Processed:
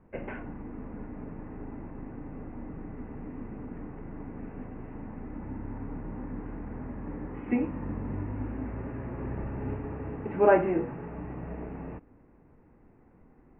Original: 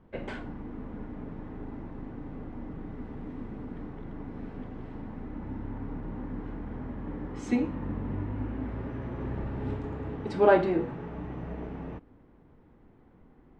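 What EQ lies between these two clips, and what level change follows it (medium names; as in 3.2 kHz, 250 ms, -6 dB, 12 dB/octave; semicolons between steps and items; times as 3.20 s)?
Chebyshev low-pass 2.7 kHz, order 6; 0.0 dB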